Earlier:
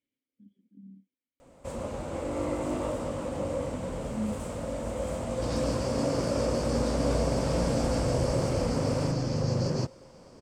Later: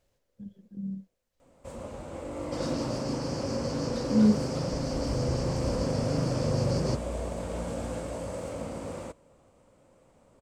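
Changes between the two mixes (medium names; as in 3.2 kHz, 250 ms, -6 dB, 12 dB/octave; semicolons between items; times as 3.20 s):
speech: remove vowel filter i; first sound -5.0 dB; second sound: entry -2.90 s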